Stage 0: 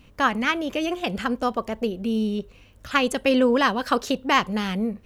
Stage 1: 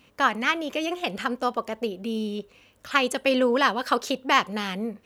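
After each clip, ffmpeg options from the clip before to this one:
ffmpeg -i in.wav -af "highpass=frequency=360:poles=1" out.wav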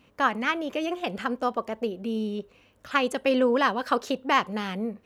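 ffmpeg -i in.wav -af "highshelf=frequency=2200:gain=-7.5" out.wav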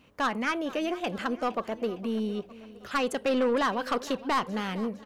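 ffmpeg -i in.wav -af "asoftclip=type=tanh:threshold=-20dB,aecho=1:1:460|920|1380|1840:0.126|0.0667|0.0354|0.0187" out.wav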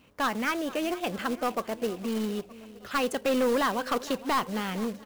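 ffmpeg -i in.wav -af "acrusher=bits=3:mode=log:mix=0:aa=0.000001" out.wav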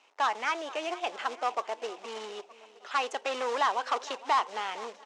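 ffmpeg -i in.wav -af "aeval=exprs='val(0)*gte(abs(val(0)),0.00106)':channel_layout=same,highpass=frequency=450:width=0.5412,highpass=frequency=450:width=1.3066,equalizer=frequency=520:width_type=q:width=4:gain=-7,equalizer=frequency=870:width_type=q:width=4:gain=6,equalizer=frequency=1600:width_type=q:width=4:gain=-3,equalizer=frequency=4500:width_type=q:width=4:gain=-4,lowpass=frequency=6800:width=0.5412,lowpass=frequency=6800:width=1.3066" out.wav

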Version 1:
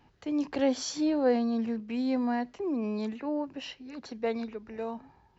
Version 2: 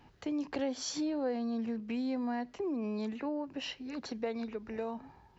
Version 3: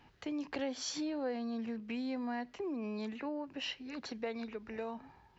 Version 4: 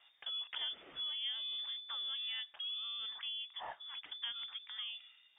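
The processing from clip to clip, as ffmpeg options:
ffmpeg -i in.wav -af "acompressor=threshold=-37dB:ratio=3,volume=2.5dB" out.wav
ffmpeg -i in.wav -af "equalizer=frequency=2400:width=0.58:gain=5.5,volume=-4dB" out.wav
ffmpeg -i in.wav -af "lowpass=frequency=3100:width_type=q:width=0.5098,lowpass=frequency=3100:width_type=q:width=0.6013,lowpass=frequency=3100:width_type=q:width=0.9,lowpass=frequency=3100:width_type=q:width=2.563,afreqshift=-3700,volume=-3.5dB" out.wav

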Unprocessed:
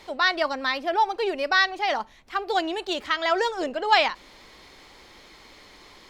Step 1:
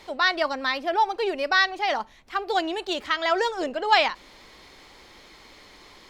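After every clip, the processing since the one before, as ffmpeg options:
ffmpeg -i in.wav -af anull out.wav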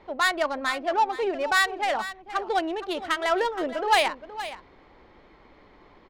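ffmpeg -i in.wav -af "adynamicsmooth=sensitivity=1.5:basefreq=1500,asoftclip=type=tanh:threshold=-9.5dB,aecho=1:1:469:0.211" out.wav

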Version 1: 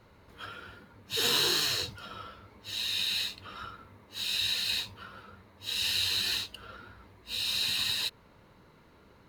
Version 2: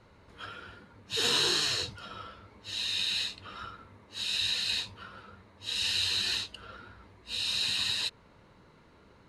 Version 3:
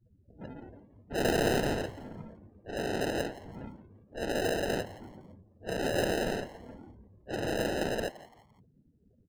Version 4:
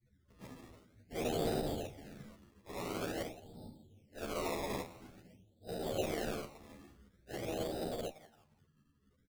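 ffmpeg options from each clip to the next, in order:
ffmpeg -i in.wav -af "lowpass=frequency=9800:width=0.5412,lowpass=frequency=9800:width=1.3066" out.wav
ffmpeg -i in.wav -filter_complex "[0:a]acrusher=samples=39:mix=1:aa=0.000001,afftdn=noise_reduction=34:noise_floor=-48,asplit=4[link_01][link_02][link_03][link_04];[link_02]adelay=170,afreqshift=130,volume=-18dB[link_05];[link_03]adelay=340,afreqshift=260,volume=-27.4dB[link_06];[link_04]adelay=510,afreqshift=390,volume=-36.7dB[link_07];[link_01][link_05][link_06][link_07]amix=inputs=4:normalize=0" out.wav
ffmpeg -i in.wav -filter_complex "[0:a]asuperstop=centerf=1600:order=20:qfactor=0.77,acrusher=samples=20:mix=1:aa=0.000001:lfo=1:lforange=20:lforate=0.48,asplit=2[link_01][link_02];[link_02]adelay=11.6,afreqshift=-0.44[link_03];[link_01][link_03]amix=inputs=2:normalize=1,volume=-4dB" out.wav

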